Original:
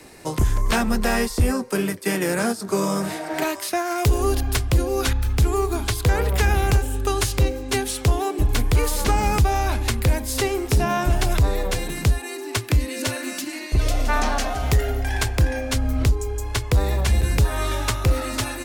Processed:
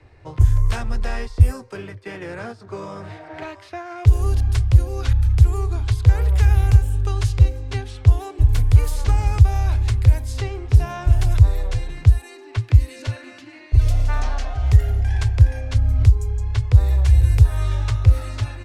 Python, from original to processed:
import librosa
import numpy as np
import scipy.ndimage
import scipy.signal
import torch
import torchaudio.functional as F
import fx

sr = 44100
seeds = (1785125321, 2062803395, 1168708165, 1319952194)

y = fx.low_shelf_res(x, sr, hz=140.0, db=10.5, q=3.0)
y = fx.env_lowpass(y, sr, base_hz=2600.0, full_db=-2.5)
y = F.gain(torch.from_numpy(y), -8.0).numpy()